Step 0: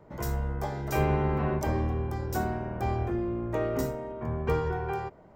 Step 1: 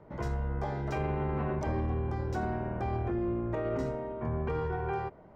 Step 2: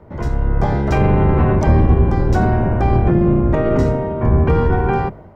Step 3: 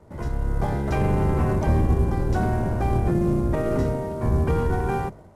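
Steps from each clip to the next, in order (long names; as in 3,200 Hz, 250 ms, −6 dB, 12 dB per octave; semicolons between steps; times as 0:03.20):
Bessel low-pass filter 3,200 Hz, order 2; brickwall limiter −24 dBFS, peak gain reduction 9.5 dB
sub-octave generator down 1 octave, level +3 dB; automatic gain control gain up to 6.5 dB; level +8.5 dB
variable-slope delta modulation 64 kbit/s; level −7.5 dB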